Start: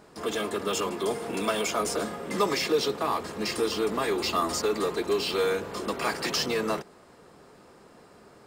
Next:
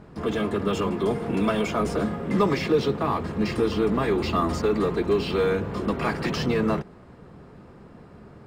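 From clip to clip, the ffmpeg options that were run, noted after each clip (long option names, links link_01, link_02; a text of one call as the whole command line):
ffmpeg -i in.wav -af "bass=frequency=250:gain=14,treble=frequency=4000:gain=-13,volume=1.5dB" out.wav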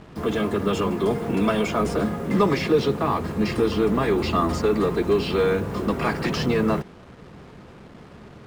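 ffmpeg -i in.wav -af "acrusher=bits=7:mix=0:aa=0.5,volume=2dB" out.wav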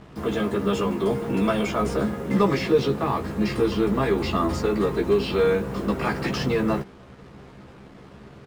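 ffmpeg -i in.wav -filter_complex "[0:a]asplit=2[link_01][link_02];[link_02]adelay=15,volume=-5dB[link_03];[link_01][link_03]amix=inputs=2:normalize=0,volume=-2.5dB" out.wav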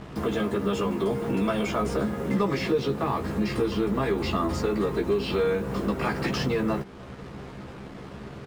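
ffmpeg -i in.wav -af "acompressor=threshold=-34dB:ratio=2,volume=5dB" out.wav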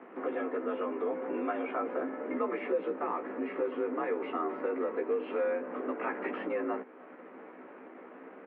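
ffmpeg -i in.wav -af "highpass=frequency=220:width_type=q:width=0.5412,highpass=frequency=220:width_type=q:width=1.307,lowpass=frequency=2300:width_type=q:width=0.5176,lowpass=frequency=2300:width_type=q:width=0.7071,lowpass=frequency=2300:width_type=q:width=1.932,afreqshift=54,volume=-6dB" out.wav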